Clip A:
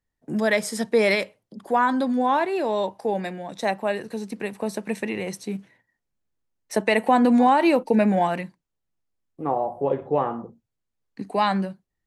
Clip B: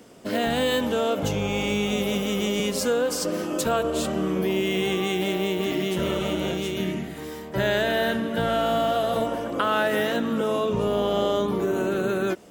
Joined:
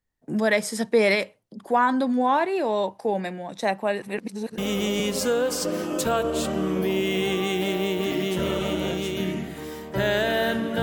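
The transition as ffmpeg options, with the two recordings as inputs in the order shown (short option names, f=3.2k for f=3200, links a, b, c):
-filter_complex "[0:a]apad=whole_dur=10.82,atrim=end=10.82,asplit=2[a][b];[a]atrim=end=4.022[c];[b]atrim=start=4.018:end=4.582,asetpts=PTS-STARTPTS,areverse[d];[1:a]atrim=start=2.178:end=8.42[e];[c][d]acrossfade=d=0.004:c1=hsin:c2=hsin[f];[f][e]acrossfade=d=0.004:c1=hsin:c2=hsin"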